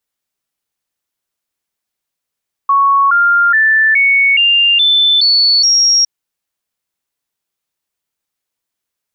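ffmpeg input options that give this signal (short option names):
-f lavfi -i "aevalsrc='0.447*clip(min(mod(t,0.42),0.42-mod(t,0.42))/0.005,0,1)*sin(2*PI*1110*pow(2,floor(t/0.42)/3)*mod(t,0.42))':d=3.36:s=44100"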